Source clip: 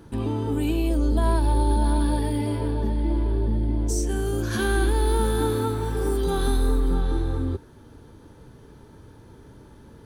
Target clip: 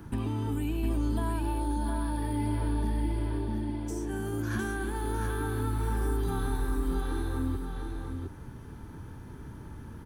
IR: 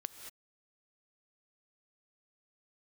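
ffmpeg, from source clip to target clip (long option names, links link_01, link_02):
-filter_complex "[0:a]equalizer=frequency=500:width_type=o:width=1:gain=-10,equalizer=frequency=4000:width_type=o:width=1:gain=-8,equalizer=frequency=8000:width_type=o:width=1:gain=-4,acrossover=split=240|2300[link_01][link_02][link_03];[link_01]acompressor=threshold=-36dB:ratio=4[link_04];[link_02]acompressor=threshold=-40dB:ratio=4[link_05];[link_03]acompressor=threshold=-54dB:ratio=4[link_06];[link_04][link_05][link_06]amix=inputs=3:normalize=0,aecho=1:1:708:0.562,volume=4dB"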